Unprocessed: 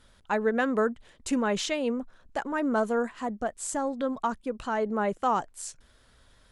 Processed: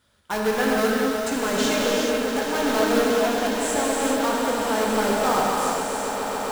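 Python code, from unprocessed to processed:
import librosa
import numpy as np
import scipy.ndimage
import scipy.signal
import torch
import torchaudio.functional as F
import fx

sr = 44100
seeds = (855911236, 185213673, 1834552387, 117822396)

p1 = fx.law_mismatch(x, sr, coded='A')
p2 = scipy.signal.sosfilt(scipy.signal.butter(4, 56.0, 'highpass', fs=sr, output='sos'), p1)
p3 = fx.hum_notches(p2, sr, base_hz=60, count=10)
p4 = (np.mod(10.0 ** (25.0 / 20.0) * p3 + 1.0, 2.0) - 1.0) / 10.0 ** (25.0 / 20.0)
p5 = p3 + (p4 * 10.0 ** (-5.0 / 20.0))
p6 = fx.echo_swell(p5, sr, ms=137, loudest=8, wet_db=-14)
y = fx.rev_gated(p6, sr, seeds[0], gate_ms=470, shape='flat', drr_db=-4.0)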